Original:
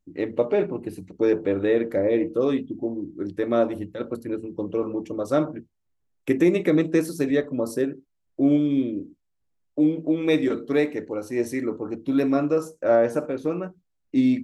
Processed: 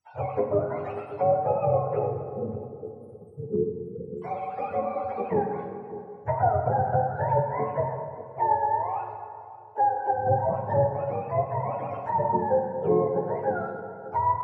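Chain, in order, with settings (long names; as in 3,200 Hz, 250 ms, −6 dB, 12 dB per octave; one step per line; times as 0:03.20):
frequency axis turned over on the octave scale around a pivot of 500 Hz
0:02.06–0:04.22: linear-phase brick-wall band-stop 500–7,400 Hz
treble cut that deepens with the level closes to 790 Hz, closed at −20.5 dBFS
on a send: feedback echo with a low-pass in the loop 583 ms, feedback 29%, low-pass 980 Hz, level −16 dB
on the sum: dense smooth reverb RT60 2 s, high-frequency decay 0.55×, DRR 4 dB
dynamic equaliser 440 Hz, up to −5 dB, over −35 dBFS, Q 5.1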